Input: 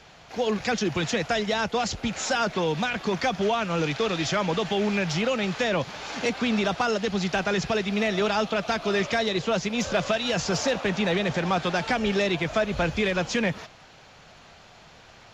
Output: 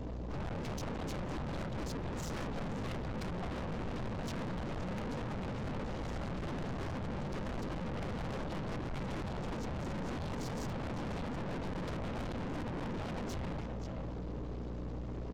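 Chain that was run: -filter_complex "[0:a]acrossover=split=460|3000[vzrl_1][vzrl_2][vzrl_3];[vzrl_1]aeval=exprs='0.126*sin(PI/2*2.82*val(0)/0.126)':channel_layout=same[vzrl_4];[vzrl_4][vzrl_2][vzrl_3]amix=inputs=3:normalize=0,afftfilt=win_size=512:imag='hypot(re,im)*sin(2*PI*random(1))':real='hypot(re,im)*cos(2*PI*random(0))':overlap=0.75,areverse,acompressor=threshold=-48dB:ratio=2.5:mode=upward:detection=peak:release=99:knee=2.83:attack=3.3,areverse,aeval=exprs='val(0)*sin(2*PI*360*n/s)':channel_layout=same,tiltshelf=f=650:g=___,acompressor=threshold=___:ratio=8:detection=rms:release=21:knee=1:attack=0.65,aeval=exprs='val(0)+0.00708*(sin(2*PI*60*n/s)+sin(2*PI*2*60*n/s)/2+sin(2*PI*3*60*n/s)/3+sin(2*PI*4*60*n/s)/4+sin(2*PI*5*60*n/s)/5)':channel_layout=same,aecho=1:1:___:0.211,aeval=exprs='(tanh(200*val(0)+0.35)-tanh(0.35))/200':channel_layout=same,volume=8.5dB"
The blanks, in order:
8.5, -29dB, 527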